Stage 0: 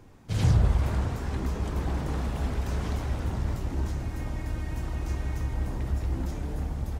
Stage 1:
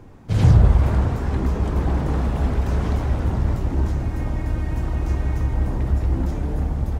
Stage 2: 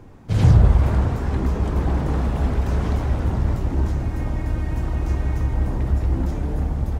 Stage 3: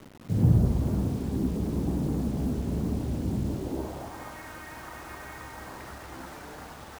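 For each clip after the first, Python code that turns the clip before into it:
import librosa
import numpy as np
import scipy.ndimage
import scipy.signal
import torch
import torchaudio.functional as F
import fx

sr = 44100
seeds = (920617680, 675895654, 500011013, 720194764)

y1 = fx.high_shelf(x, sr, hz=2200.0, db=-9.0)
y1 = y1 * librosa.db_to_amplitude(8.5)
y2 = y1
y3 = fx.filter_sweep_bandpass(y2, sr, from_hz=230.0, to_hz=1500.0, start_s=3.42, end_s=4.35, q=1.3)
y3 = fx.quant_dither(y3, sr, seeds[0], bits=8, dither='none')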